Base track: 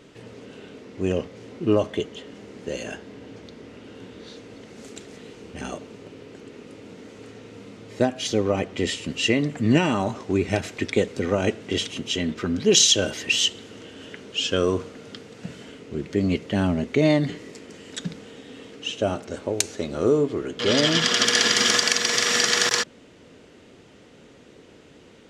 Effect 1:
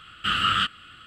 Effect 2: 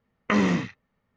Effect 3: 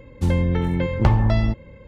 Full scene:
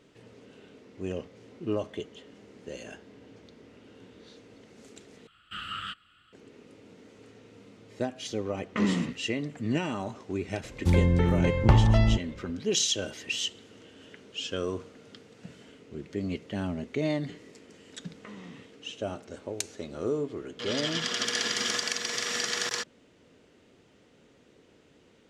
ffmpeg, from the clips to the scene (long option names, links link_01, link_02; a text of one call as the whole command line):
ffmpeg -i bed.wav -i cue0.wav -i cue1.wav -i cue2.wav -filter_complex "[2:a]asplit=2[link_01][link_02];[0:a]volume=-10dB[link_03];[link_01]equalizer=frequency=230:width=1.5:gain=7[link_04];[link_02]acompressor=threshold=-29dB:ratio=3:attack=2.9:release=158:knee=1:detection=peak[link_05];[link_03]asplit=2[link_06][link_07];[link_06]atrim=end=5.274[link_08];[1:a]atrim=end=1.06,asetpts=PTS-STARTPTS,volume=-14.5dB[link_09];[link_07]atrim=start=6.326[link_10];[link_04]atrim=end=1.16,asetpts=PTS-STARTPTS,volume=-9.5dB,afade=type=in:duration=0.004:curve=hsin,afade=type=out:start_time=1.156:duration=0.004:curve=hsin,adelay=8460[link_11];[3:a]atrim=end=1.87,asetpts=PTS-STARTPTS,volume=-2.5dB,afade=type=in:duration=0.004:curve=hsin,afade=type=out:start_time=1.866:duration=0.004:curve=hsin,adelay=10640[link_12];[link_05]atrim=end=1.16,asetpts=PTS-STARTPTS,volume=-15dB,afade=type=in:duration=0.004:curve=hsin,afade=type=out:start_time=1.156:duration=0.004:curve=hsin,adelay=17950[link_13];[link_08][link_09]acrossfade=duration=0.004:curve1=hsin:curve2=hsin[link_14];[link_14][link_10]acrossfade=duration=0.004:curve1=hsin:curve2=hsin[link_15];[link_15][link_11][link_12][link_13]amix=inputs=4:normalize=0" out.wav